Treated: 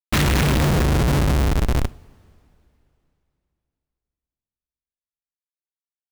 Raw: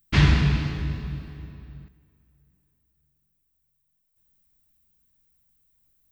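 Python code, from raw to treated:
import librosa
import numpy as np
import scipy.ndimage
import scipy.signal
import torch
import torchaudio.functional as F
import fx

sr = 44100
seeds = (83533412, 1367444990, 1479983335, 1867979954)

y = fx.peak_eq(x, sr, hz=6300.0, db=-14.0, octaves=0.44)
y = fx.leveller(y, sr, passes=2)
y = fx.schmitt(y, sr, flips_db=-33.5)
y = fx.rev_double_slope(y, sr, seeds[0], early_s=0.35, late_s=3.0, knee_db=-18, drr_db=16.5)
y = F.gain(torch.from_numpy(y), 6.5).numpy()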